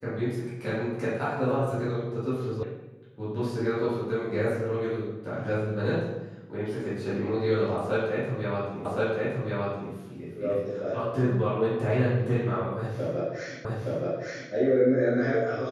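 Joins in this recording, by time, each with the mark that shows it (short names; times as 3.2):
2.63 sound cut off
8.85 repeat of the last 1.07 s
13.65 repeat of the last 0.87 s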